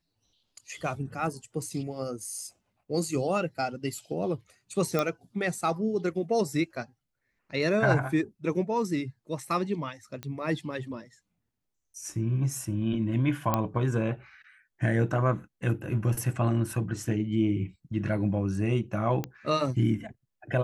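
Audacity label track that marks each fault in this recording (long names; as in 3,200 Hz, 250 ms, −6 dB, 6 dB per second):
4.990000	4.990000	click −13 dBFS
10.230000	10.230000	click −22 dBFS
13.540000	13.540000	click −11 dBFS
19.240000	19.240000	click −17 dBFS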